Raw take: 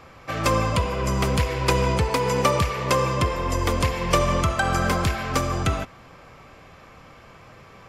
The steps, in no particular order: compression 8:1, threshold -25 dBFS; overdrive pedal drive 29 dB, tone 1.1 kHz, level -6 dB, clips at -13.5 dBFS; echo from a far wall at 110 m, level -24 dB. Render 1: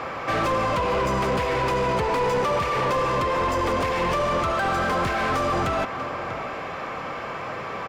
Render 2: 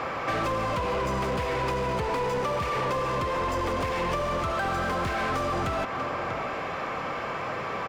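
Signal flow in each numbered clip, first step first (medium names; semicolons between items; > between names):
echo from a far wall > compression > overdrive pedal; echo from a far wall > overdrive pedal > compression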